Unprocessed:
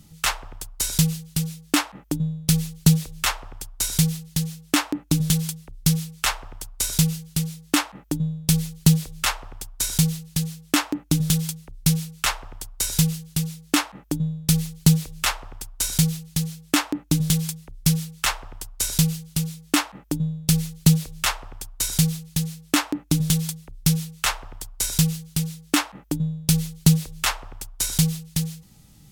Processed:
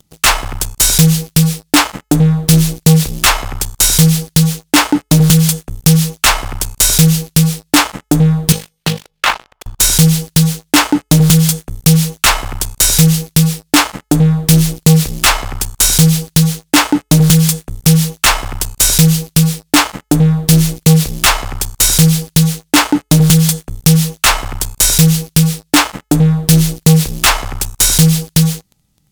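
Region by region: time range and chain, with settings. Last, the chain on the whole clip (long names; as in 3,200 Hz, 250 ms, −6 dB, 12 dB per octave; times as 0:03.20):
0:08.52–0:09.66: three-way crossover with the lows and the highs turned down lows −19 dB, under 380 Hz, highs −18 dB, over 3,700 Hz + upward compression, threshold −50 dBFS + amplitude modulation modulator 50 Hz, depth 40%
whole clip: hum removal 428.6 Hz, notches 36; leveller curve on the samples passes 5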